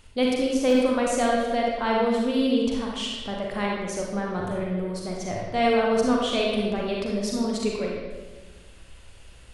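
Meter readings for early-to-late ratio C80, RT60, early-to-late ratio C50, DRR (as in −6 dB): 2.0 dB, 1.3 s, −1.0 dB, −2.5 dB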